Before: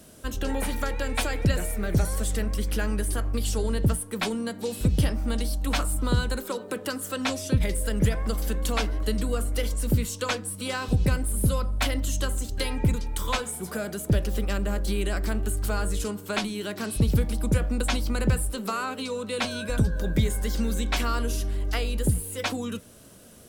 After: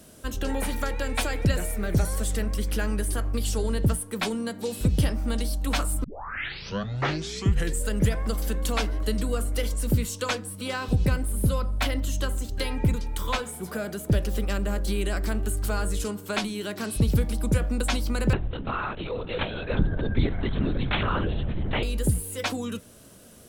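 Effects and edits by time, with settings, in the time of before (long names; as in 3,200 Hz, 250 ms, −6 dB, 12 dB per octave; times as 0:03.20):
0:06.04: tape start 1.92 s
0:10.39–0:14.10: dynamic equaliser 8,500 Hz, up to −5 dB, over −46 dBFS, Q 0.75
0:18.33–0:21.83: linear-prediction vocoder at 8 kHz whisper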